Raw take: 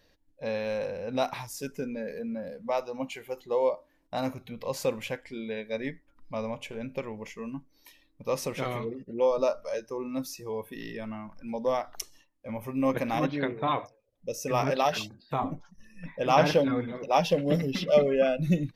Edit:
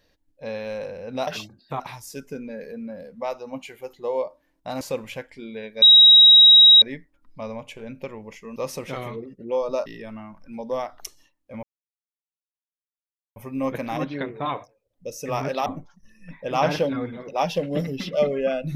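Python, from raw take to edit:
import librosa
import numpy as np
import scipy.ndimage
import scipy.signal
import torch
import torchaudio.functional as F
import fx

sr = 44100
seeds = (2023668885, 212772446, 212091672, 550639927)

y = fx.edit(x, sr, fx.cut(start_s=4.28, length_s=0.47),
    fx.insert_tone(at_s=5.76, length_s=1.0, hz=3820.0, db=-7.5),
    fx.cut(start_s=7.5, length_s=0.75),
    fx.cut(start_s=9.55, length_s=1.26),
    fx.insert_silence(at_s=12.58, length_s=1.73),
    fx.move(start_s=14.88, length_s=0.53, to_s=1.27), tone=tone)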